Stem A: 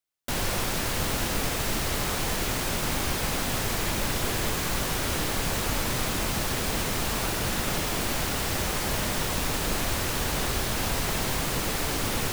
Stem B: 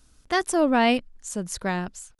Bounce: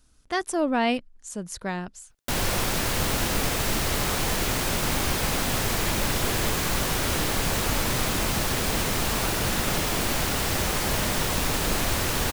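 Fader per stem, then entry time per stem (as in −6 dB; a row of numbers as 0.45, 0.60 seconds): +2.5, −3.5 decibels; 2.00, 0.00 seconds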